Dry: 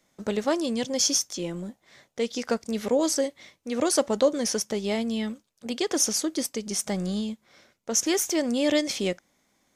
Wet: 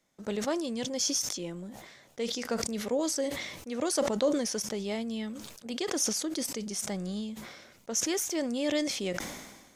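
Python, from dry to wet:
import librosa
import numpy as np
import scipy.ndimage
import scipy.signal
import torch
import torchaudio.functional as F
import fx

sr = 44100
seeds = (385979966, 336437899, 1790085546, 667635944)

y = fx.sustainer(x, sr, db_per_s=46.0)
y = y * 10.0 ** (-6.5 / 20.0)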